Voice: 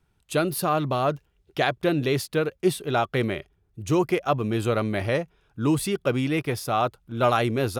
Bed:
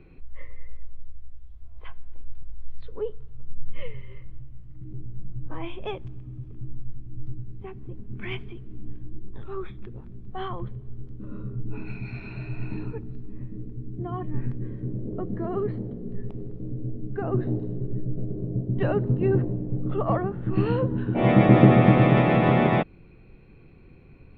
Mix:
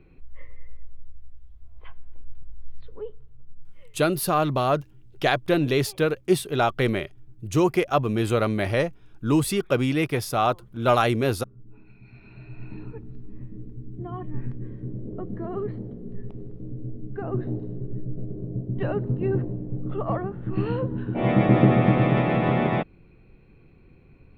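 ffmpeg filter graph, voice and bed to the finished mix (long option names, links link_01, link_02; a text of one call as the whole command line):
ffmpeg -i stem1.wav -i stem2.wav -filter_complex "[0:a]adelay=3650,volume=1.5dB[link_01];[1:a]volume=11.5dB,afade=type=out:start_time=2.75:duration=0.98:silence=0.199526,afade=type=in:start_time=11.95:duration=1.33:silence=0.188365[link_02];[link_01][link_02]amix=inputs=2:normalize=0" out.wav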